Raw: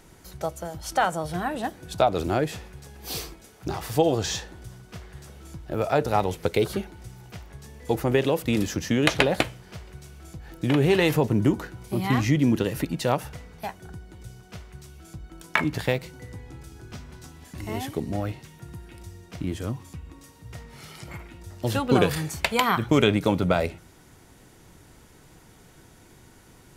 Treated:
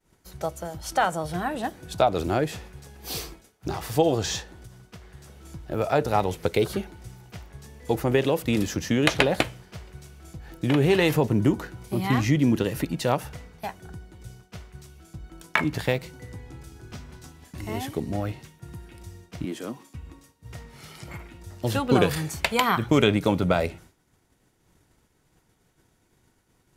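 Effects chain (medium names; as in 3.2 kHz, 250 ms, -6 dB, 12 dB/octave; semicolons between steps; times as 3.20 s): 19.45–19.95 s: high-pass 200 Hz 24 dB/octave; expander -42 dBFS; 4.41–5.41 s: compression, threshold -41 dBFS, peak gain reduction 6.5 dB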